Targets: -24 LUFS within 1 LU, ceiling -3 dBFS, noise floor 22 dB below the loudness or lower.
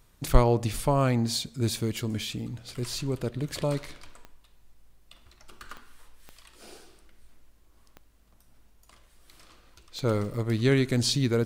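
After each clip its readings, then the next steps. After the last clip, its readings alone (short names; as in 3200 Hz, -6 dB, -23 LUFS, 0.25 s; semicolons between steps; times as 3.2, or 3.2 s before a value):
clicks 6; loudness -27.5 LUFS; peak -5.0 dBFS; loudness target -24.0 LUFS
-> de-click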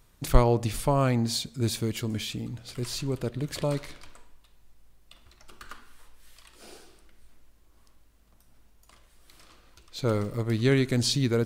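clicks 0; loudness -27.5 LUFS; peak -5.0 dBFS; loudness target -24.0 LUFS
-> gain +3.5 dB; limiter -3 dBFS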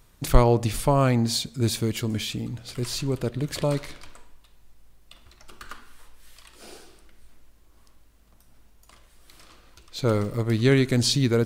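loudness -24.0 LUFS; peak -3.0 dBFS; noise floor -57 dBFS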